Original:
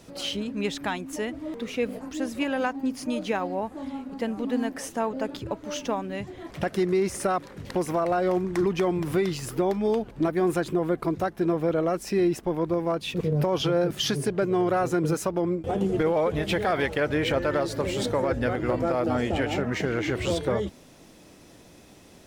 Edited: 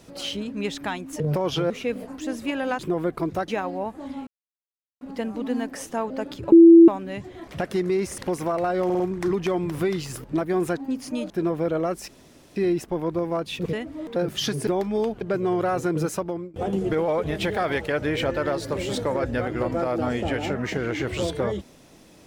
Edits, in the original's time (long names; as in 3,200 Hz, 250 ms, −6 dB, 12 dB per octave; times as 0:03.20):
0:01.20–0:01.63: swap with 0:13.28–0:13.78
0:02.72–0:03.25: swap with 0:10.64–0:11.33
0:04.04: splice in silence 0.74 s
0:05.55–0:05.91: beep over 334 Hz −6 dBFS
0:07.21–0:07.66: remove
0:08.33: stutter 0.05 s, 4 plays
0:09.57–0:10.11: move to 0:14.29
0:12.11: splice in room tone 0.48 s
0:15.26–0:15.62: fade out, to −19 dB